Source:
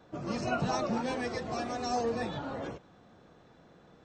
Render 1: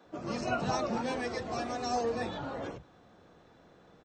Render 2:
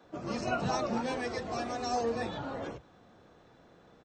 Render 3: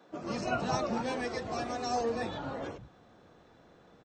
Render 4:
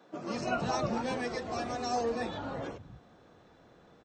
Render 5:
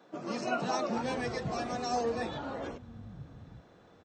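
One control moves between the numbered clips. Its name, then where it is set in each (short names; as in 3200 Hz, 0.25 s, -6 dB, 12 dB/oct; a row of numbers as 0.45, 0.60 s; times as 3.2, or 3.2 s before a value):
bands offset in time, time: 50, 30, 100, 210, 830 ms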